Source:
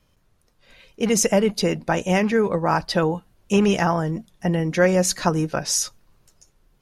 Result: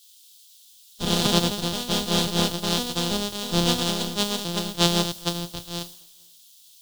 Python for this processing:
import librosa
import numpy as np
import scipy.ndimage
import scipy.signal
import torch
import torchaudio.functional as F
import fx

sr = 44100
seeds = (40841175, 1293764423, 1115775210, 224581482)

p1 = np.r_[np.sort(x[:len(x) // 256 * 256].reshape(-1, 256), axis=1).ravel(), x[len(x) // 256 * 256:]]
p2 = scipy.signal.sosfilt(scipy.signal.butter(2, 7300.0, 'lowpass', fs=sr, output='sos'), p1)
p3 = fx.backlash(p2, sr, play_db=-20.0)
p4 = p2 + F.gain(torch.from_numpy(p3), -6.5).numpy()
p5 = fx.echo_pitch(p4, sr, ms=141, semitones=3, count=2, db_per_echo=-3.0)
p6 = fx.quant_dither(p5, sr, seeds[0], bits=6, dither='triangular')
p7 = fx.high_shelf_res(p6, sr, hz=2700.0, db=7.5, q=3.0)
p8 = p7 + fx.echo_feedback(p7, sr, ms=470, feedback_pct=46, wet_db=-24, dry=0)
p9 = fx.band_widen(p8, sr, depth_pct=100)
y = F.gain(torch.from_numpy(p9), -11.0).numpy()